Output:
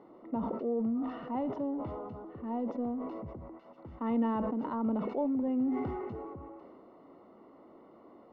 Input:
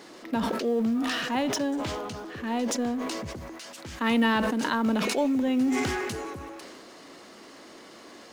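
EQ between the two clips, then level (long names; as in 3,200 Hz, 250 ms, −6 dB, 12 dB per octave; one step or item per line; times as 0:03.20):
Savitzky-Golay smoothing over 65 samples
high-frequency loss of the air 220 metres
−5.5 dB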